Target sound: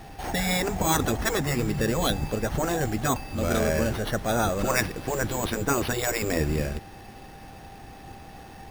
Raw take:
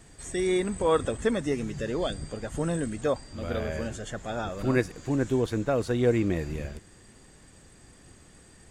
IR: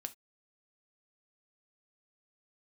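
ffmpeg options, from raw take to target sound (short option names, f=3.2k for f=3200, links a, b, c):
-af "acrusher=samples=6:mix=1:aa=0.000001,afftfilt=real='re*lt(hypot(re,im),0.224)':imag='im*lt(hypot(re,im),0.224)':win_size=1024:overlap=0.75,aeval=exprs='val(0)+0.00141*sin(2*PI*790*n/s)':c=same,volume=8.5dB"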